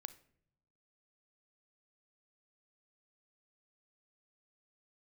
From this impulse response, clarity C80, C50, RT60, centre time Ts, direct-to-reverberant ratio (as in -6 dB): 20.0 dB, 16.0 dB, not exponential, 4 ms, 13.0 dB